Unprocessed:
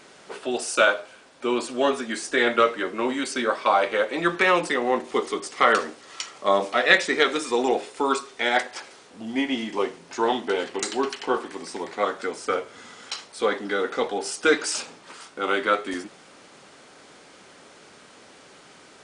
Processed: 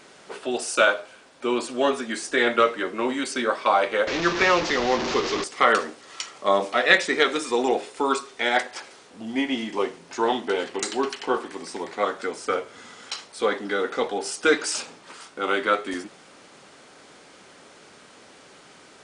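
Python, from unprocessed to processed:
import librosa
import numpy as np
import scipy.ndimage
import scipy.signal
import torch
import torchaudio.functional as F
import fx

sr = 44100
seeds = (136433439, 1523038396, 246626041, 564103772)

y = fx.delta_mod(x, sr, bps=32000, step_db=-20.5, at=(4.07, 5.44))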